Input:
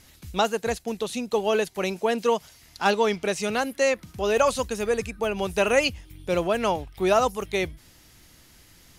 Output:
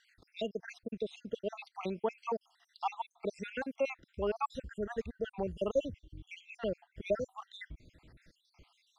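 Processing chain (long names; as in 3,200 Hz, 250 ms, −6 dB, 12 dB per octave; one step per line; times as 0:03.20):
time-frequency cells dropped at random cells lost 68%
in parallel at +1 dB: downward compressor, threshold −40 dBFS, peak gain reduction 21.5 dB
on the sum: head-to-tape spacing loss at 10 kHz 24 dB
level −7.5 dB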